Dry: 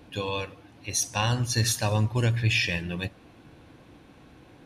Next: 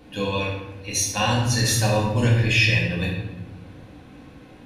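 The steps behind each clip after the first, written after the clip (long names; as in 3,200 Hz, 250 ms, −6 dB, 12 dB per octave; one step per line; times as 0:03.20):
rectangular room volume 400 cubic metres, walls mixed, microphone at 2 metres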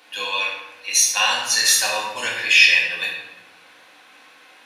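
high-pass filter 1,200 Hz 12 dB per octave
level +7.5 dB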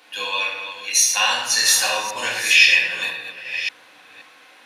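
delay that plays each chunk backwards 527 ms, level −10 dB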